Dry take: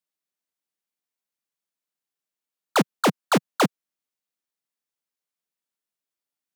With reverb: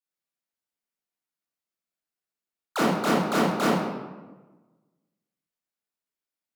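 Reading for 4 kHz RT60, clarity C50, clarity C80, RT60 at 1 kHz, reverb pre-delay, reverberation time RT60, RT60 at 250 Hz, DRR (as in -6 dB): 0.75 s, -2.5 dB, 1.5 dB, 1.2 s, 19 ms, 1.2 s, 1.5 s, -9.5 dB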